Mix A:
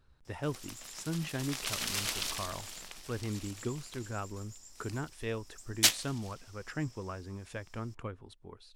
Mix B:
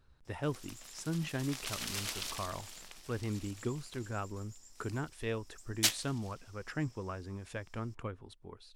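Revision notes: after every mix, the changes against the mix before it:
background -4.5 dB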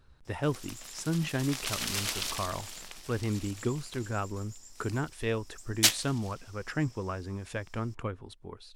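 speech +5.5 dB; background +6.0 dB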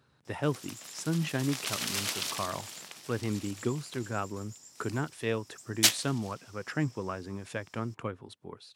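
master: add HPF 110 Hz 24 dB/oct

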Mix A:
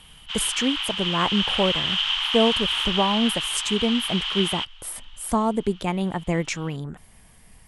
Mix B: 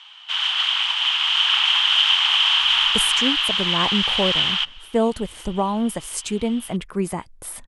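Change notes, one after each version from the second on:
speech: entry +2.60 s; background +7.0 dB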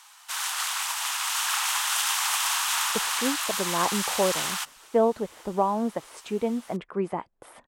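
speech: add band-pass 670 Hz, Q 0.69; background: remove synth low-pass 3100 Hz, resonance Q 10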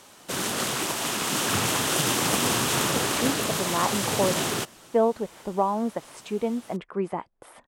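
background: remove steep high-pass 830 Hz 48 dB/oct

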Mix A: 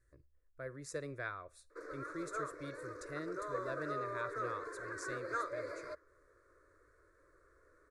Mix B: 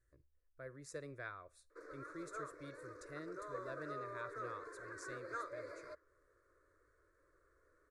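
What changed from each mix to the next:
speech -5.5 dB; background -6.0 dB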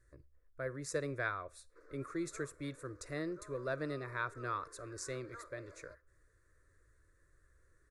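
speech +10.5 dB; background -8.0 dB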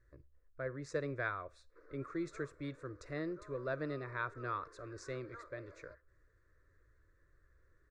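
master: add air absorption 140 m

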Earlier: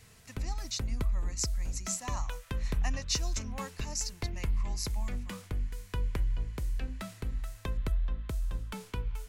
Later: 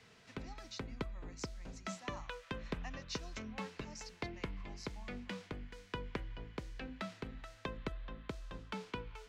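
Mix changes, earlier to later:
speech -9.5 dB; master: add three-band isolator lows -17 dB, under 160 Hz, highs -24 dB, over 5600 Hz

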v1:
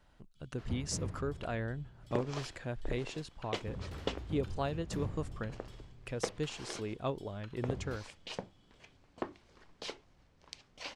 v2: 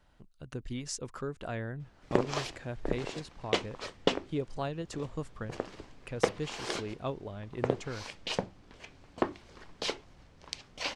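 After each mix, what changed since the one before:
first sound: muted; second sound +9.0 dB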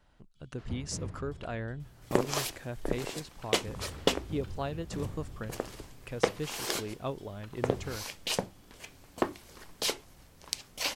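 first sound: unmuted; second sound: remove air absorption 120 m

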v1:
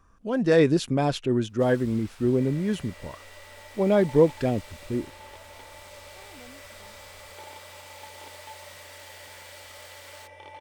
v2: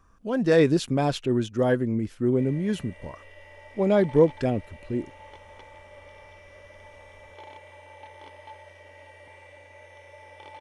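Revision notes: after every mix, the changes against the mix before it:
first sound: muted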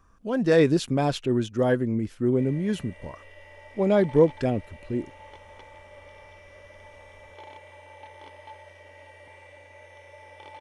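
none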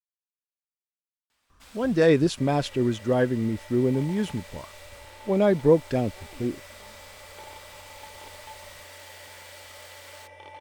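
speech: entry +1.50 s; first sound: unmuted

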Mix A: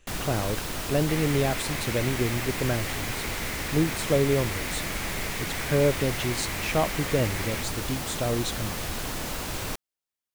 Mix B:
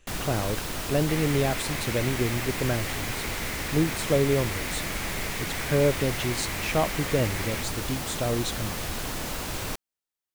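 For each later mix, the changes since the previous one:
none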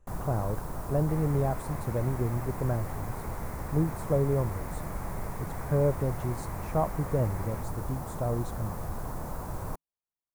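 master: add EQ curve 160 Hz 0 dB, 270 Hz -7 dB, 1000 Hz -1 dB, 3000 Hz -27 dB, 11000 Hz -11 dB

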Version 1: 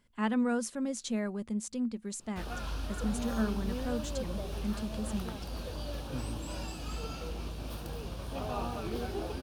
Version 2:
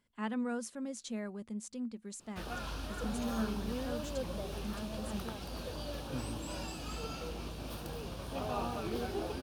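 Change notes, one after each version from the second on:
speech -6.0 dB; master: add low shelf 61 Hz -10 dB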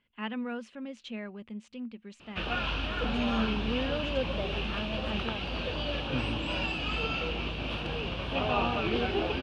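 background +7.0 dB; master: add synth low-pass 2800 Hz, resonance Q 3.8

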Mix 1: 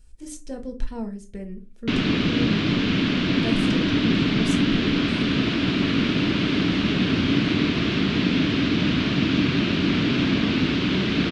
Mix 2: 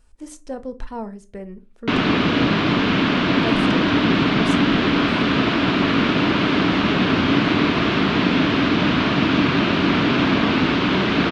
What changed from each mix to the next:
speech: send -8.0 dB; master: add bell 910 Hz +13 dB 2 oct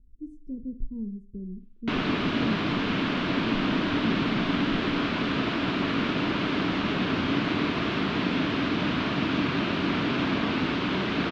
speech: add inverse Chebyshev low-pass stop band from 630 Hz, stop band 40 dB; background -8.5 dB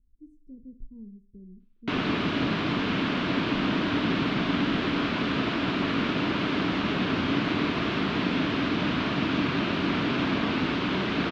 speech -10.0 dB

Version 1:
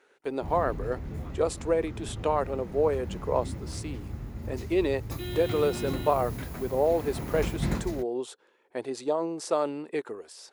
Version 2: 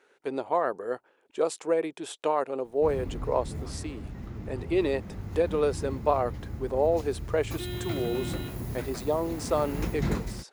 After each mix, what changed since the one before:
background: entry +2.40 s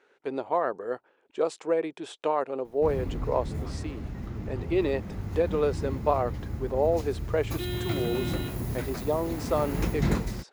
speech: add air absorption 71 m; background +3.0 dB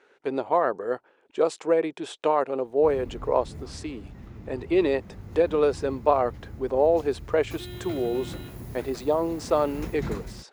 speech +4.0 dB; background -7.0 dB

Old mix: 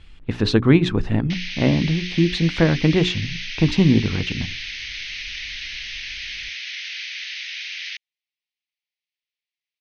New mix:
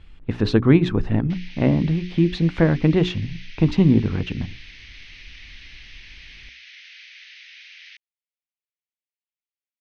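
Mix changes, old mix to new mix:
background -8.0 dB; master: add high shelf 2600 Hz -9 dB

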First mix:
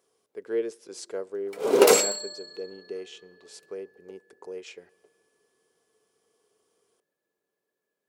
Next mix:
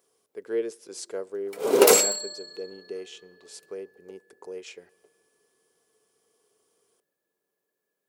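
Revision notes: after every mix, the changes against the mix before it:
master: add high shelf 8900 Hz +8.5 dB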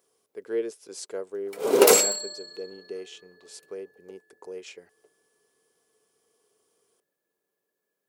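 reverb: off

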